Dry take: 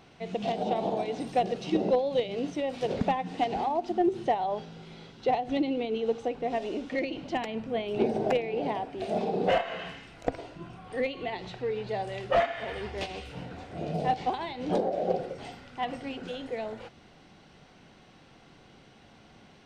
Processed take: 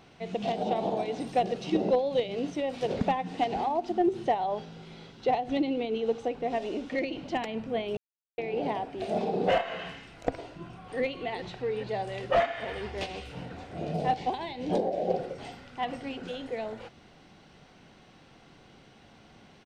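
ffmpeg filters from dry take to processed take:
-filter_complex "[0:a]asplit=2[a][b];[b]afade=t=in:st=10.46:d=0.01,afade=t=out:st=10.99:d=0.01,aecho=0:1:420|840|1260|1680|2100|2520|2940|3360|3780|4200|4620|5040:0.421697|0.316272|0.237204|0.177903|0.133427|0.100071|0.0750529|0.0562897|0.0422173|0.0316629|0.0237472|0.0178104[c];[a][c]amix=inputs=2:normalize=0,asettb=1/sr,asplit=3[d][e][f];[d]atrim=end=14.194[g];[e]atrim=start=14.19:end=15.13,asetpts=PTS-STARTPTS,afade=t=in:d=0.004:c=qsin,afade=t=out:st=0.936:d=0.004:c=qsin,equalizer=f=1.3k:t=o:w=0.46:g=-9.5[h];[f]atrim=start=15.126[i];[g][h]acrossfade=d=0.004:c1=hsin:c2=qsin[j];[j][i]acrossfade=d=0.004:c1=qsin:c2=hsin,asplit=3[k][l][m];[k]atrim=end=7.97,asetpts=PTS-STARTPTS,afade=t=out:st=7.966:d=0.004:c=hsin[n];[l]atrim=start=7.97:end=8.38,asetpts=PTS-STARTPTS,volume=0[o];[m]atrim=start=8.38,asetpts=PTS-STARTPTS,afade=t=in:d=0.004:c=hsin[p];[n][o][p]concat=n=3:v=0:a=1"

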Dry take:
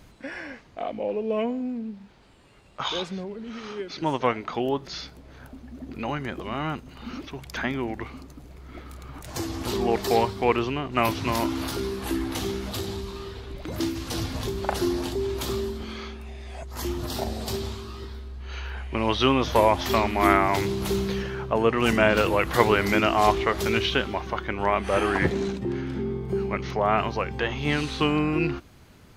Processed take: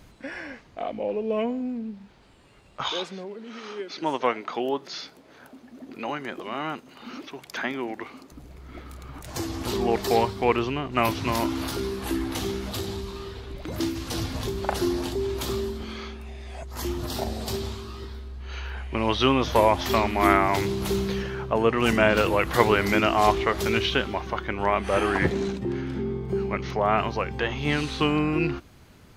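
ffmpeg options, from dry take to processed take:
-filter_complex "[0:a]asettb=1/sr,asplit=3[a][b][c];[a]atrim=end=2.904[d];[b]atrim=start=2.9:end=8.32,asetpts=PTS-STARTPTS,afade=t=in:d=0.004:c=qsin,afade=t=out:st=5.416:d=0.004:c=qsin,highpass=260[e];[c]atrim=start=8.316[f];[d][e]acrossfade=d=0.004:c1=hsin:c2=qsin[g];[g][f]acrossfade=d=0.004:c1=qsin:c2=hsin,asettb=1/sr,asplit=3[h][i][j];[h]atrim=end=26.004[k];[i]atrim=start=26:end=26.67,asetpts=PTS-STARTPTS,afade=t=in:d=0.004:c=qsin,afade=t=out:st=0.666:d=0.004:c=qsin,equalizer=f=11k:t=o:w=0.34:g=-7.5[l];[j]atrim=start=26.666[m];[k][l]acrossfade=d=0.004:c1=hsin:c2=qsin[n];[n][m]acrossfade=d=0.004:c1=qsin:c2=hsin"

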